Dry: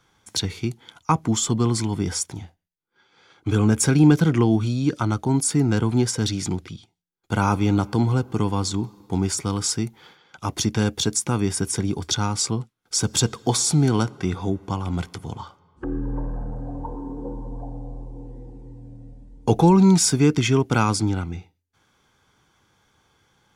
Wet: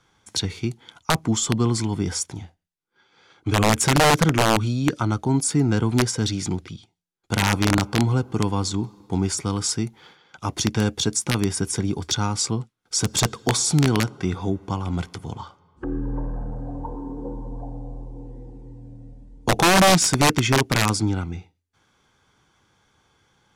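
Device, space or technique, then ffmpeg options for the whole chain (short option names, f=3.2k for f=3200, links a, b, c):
overflowing digital effects unit: -af "aeval=exprs='(mod(3.16*val(0)+1,2)-1)/3.16':c=same,lowpass=11k"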